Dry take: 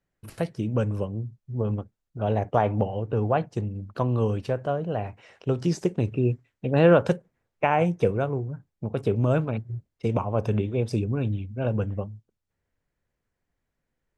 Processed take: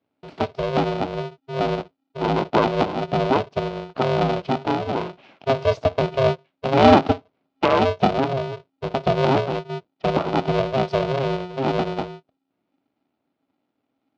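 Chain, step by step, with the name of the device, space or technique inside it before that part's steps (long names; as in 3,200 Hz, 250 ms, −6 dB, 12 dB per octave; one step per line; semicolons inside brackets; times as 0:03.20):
ring modulator pedal into a guitar cabinet (ring modulator with a square carrier 270 Hz; loudspeaker in its box 100–4,300 Hz, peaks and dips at 280 Hz +5 dB, 620 Hz +8 dB, 1,800 Hz −7 dB)
level +2.5 dB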